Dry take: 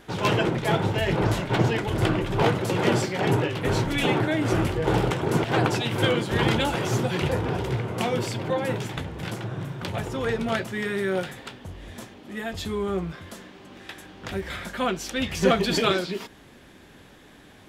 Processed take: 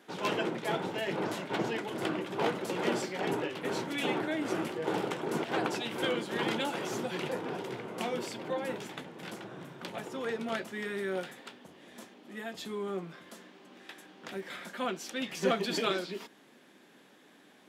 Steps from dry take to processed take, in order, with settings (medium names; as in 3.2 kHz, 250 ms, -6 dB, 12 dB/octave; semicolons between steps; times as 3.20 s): high-pass 190 Hz 24 dB/octave; trim -8 dB